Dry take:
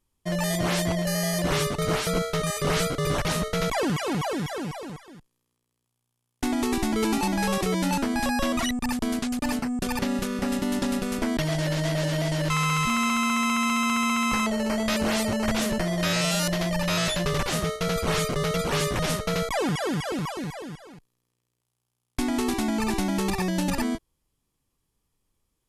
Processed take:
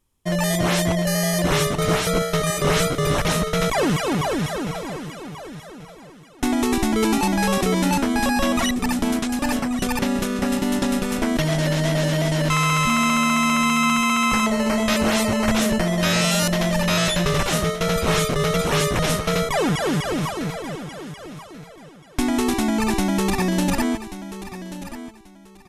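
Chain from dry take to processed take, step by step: notch 4600 Hz, Q 14; on a send: feedback echo 1.135 s, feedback 22%, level -13 dB; on the sum: gain +5 dB

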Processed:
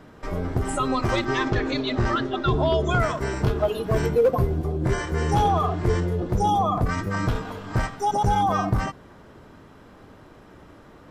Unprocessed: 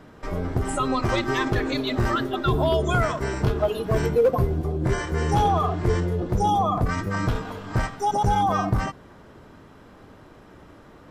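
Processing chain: 1.25–3 LPF 6900 Hz 24 dB/oct

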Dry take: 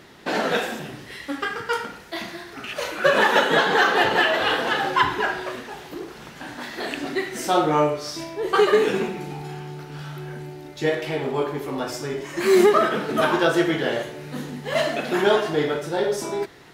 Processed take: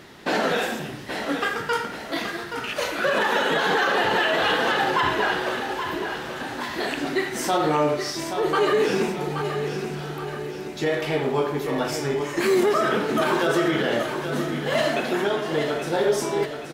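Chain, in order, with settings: 15.05–15.9 compressor 3:1, threshold -25 dBFS, peak gain reduction 9 dB; limiter -15 dBFS, peak gain reduction 10 dB; feedback echo 0.826 s, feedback 47%, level -8 dB; gain +2 dB

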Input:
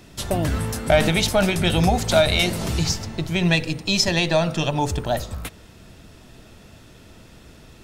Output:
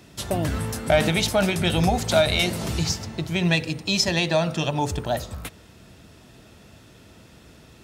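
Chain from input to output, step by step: HPF 59 Hz; gain -2 dB

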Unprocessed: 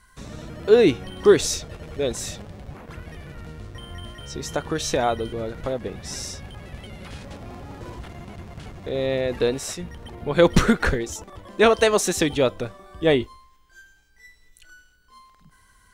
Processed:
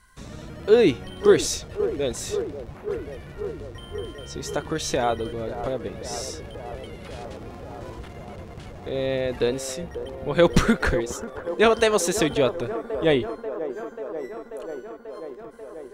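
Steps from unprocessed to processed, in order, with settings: band-limited delay 0.538 s, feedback 77%, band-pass 600 Hz, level -10.5 dB; gain -1.5 dB

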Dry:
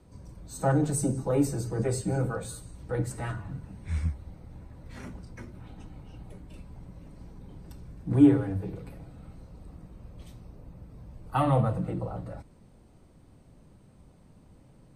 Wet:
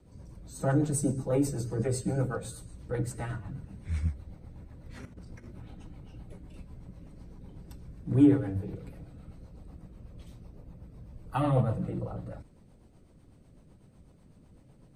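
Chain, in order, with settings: 5.05–5.71 negative-ratio compressor -44 dBFS, ratio -0.5; rotary speaker horn 8 Hz

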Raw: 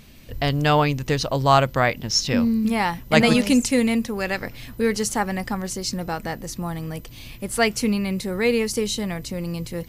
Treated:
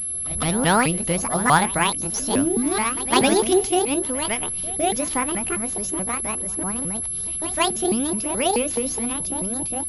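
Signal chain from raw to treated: repeated pitch sweeps +11 st, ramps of 0.214 s; reverse echo 0.158 s -16.5 dB; pulse-width modulation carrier 11000 Hz

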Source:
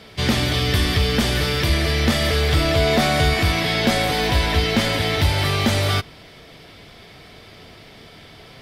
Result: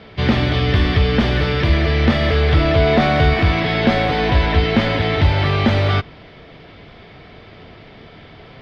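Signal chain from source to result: air absorption 290 m; gain +4.5 dB

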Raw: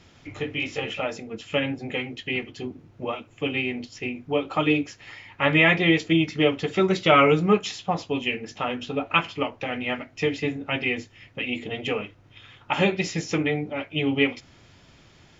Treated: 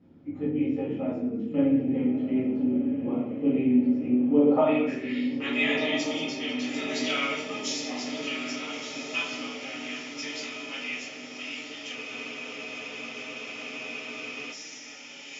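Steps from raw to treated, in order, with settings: reverse delay 0.105 s, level -11.5 dB; band-pass sweep 250 Hz -> 5900 Hz, 4.29–5.38; diffused feedback echo 1.32 s, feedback 65%, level -8 dB; reverb RT60 0.70 s, pre-delay 4 ms, DRR -7 dB; spectral freeze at 11.98, 2.55 s

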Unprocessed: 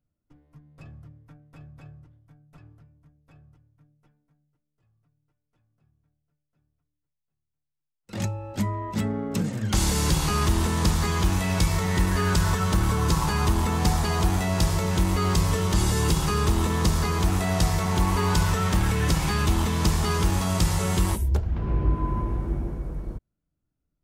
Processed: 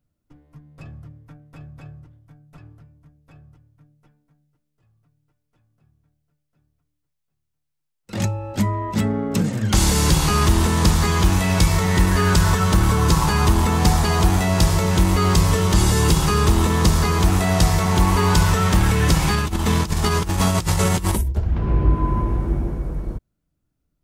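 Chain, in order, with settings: 19.34–21.37 negative-ratio compressor -25 dBFS, ratio -0.5; gain +6 dB

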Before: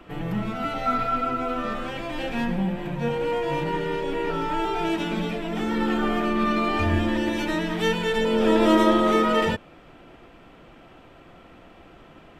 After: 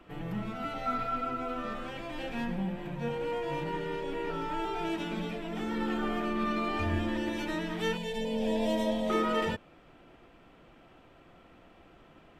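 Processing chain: 7.97–9.1 fixed phaser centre 350 Hz, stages 6; gain -8 dB

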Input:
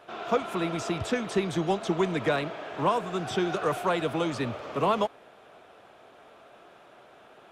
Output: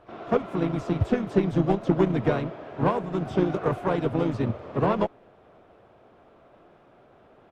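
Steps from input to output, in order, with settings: harmoniser -3 st -7 dB, +7 st -12 dB; tilt -3.5 dB/oct; added harmonics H 7 -26 dB, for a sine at -6 dBFS; gain -1.5 dB

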